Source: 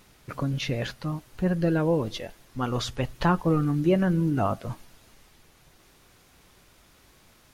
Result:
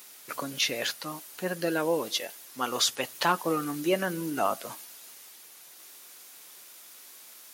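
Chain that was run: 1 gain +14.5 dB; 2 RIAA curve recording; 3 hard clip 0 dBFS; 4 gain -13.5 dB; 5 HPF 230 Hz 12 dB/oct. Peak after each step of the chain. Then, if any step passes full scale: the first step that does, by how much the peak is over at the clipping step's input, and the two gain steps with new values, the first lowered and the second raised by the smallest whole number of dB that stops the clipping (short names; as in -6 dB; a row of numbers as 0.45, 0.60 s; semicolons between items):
+4.5, +4.0, 0.0, -13.5, -11.5 dBFS; step 1, 4.0 dB; step 1 +10.5 dB, step 4 -9.5 dB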